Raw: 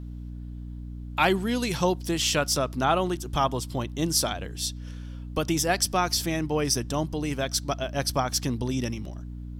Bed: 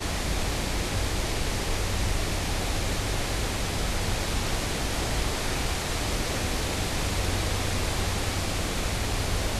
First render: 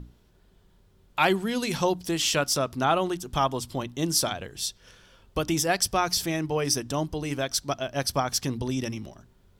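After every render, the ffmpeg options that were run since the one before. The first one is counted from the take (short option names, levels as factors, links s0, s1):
-af "bandreject=f=60:t=h:w=6,bandreject=f=120:t=h:w=6,bandreject=f=180:t=h:w=6,bandreject=f=240:t=h:w=6,bandreject=f=300:t=h:w=6"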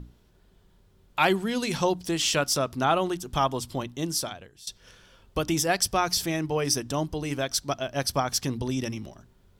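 -filter_complex "[0:a]asettb=1/sr,asplit=3[s0][s1][s2];[s0]atrim=end=1.444[s3];[s1]atrim=start=1.44:end=2.33,asetpts=PTS-STARTPTS,afade=t=in:d=0.004:c=qsin,afade=t=out:st=0.886:d=0.004:c=qsin,equalizer=f=12000:w=5.2:g=-7[s4];[s2]atrim=start=2.326[s5];[s3][s4]acrossfade=d=0.004:c1=hsin:c2=qsin[s6];[s6][s5]acrossfade=d=0.004:c1=qsin:c2=hsin,asplit=2[s7][s8];[s7]atrim=end=4.67,asetpts=PTS-STARTPTS,afade=t=out:st=3.77:d=0.9:silence=0.1[s9];[s8]atrim=start=4.67,asetpts=PTS-STARTPTS,afade=t=in:d=0.004:c=hsin:silence=0.1[s10];[s9][s10]concat=n=2:v=0:a=1"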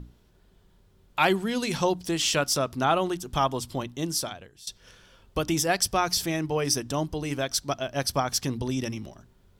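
-af anull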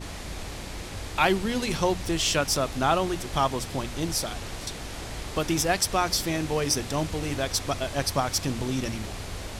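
-filter_complex "[1:a]volume=0.376[s0];[0:a][s0]amix=inputs=2:normalize=0"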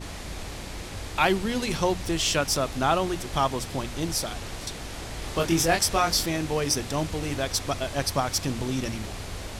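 -filter_complex "[0:a]asettb=1/sr,asplit=3[s0][s1][s2];[s0]atrim=end=5.204[s3];[s1]atrim=start=5.2:end=6.26,asetpts=PTS-STARTPTS,afade=t=in:d=0.004:c=qsin,afade=t=out:st=1.056:d=0.004:c=qsin,asplit=2[s4][s5];[s5]adelay=24,volume=0.708[s6];[s4][s6]amix=inputs=2:normalize=0,atrim=end_sample=46746[s7];[s2]atrim=start=6.256[s8];[s3][s7]acrossfade=d=0.004:c1=hsin:c2=qsin[s9];[s9][s8]acrossfade=d=0.004:c1=qsin:c2=hsin"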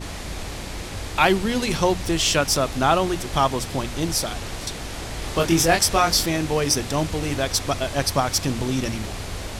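-af "volume=1.68"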